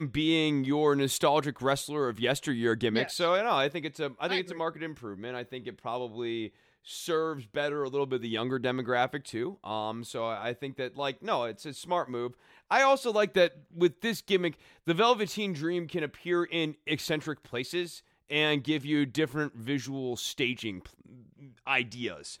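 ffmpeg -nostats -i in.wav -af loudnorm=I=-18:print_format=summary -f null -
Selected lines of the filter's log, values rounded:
Input Integrated:    -30.2 LUFS
Input True Peak:     -11.3 dBTP
Input LRA:             5.4 LU
Input Threshold:     -40.6 LUFS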